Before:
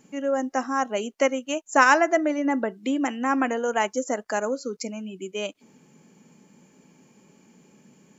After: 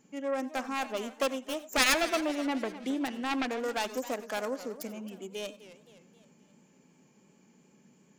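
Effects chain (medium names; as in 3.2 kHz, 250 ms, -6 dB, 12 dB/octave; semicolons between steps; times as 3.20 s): self-modulated delay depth 0.61 ms; on a send at -17 dB: reverberation, pre-delay 80 ms; on the sum: modulated delay 262 ms, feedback 49%, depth 216 cents, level -15 dB; trim -7 dB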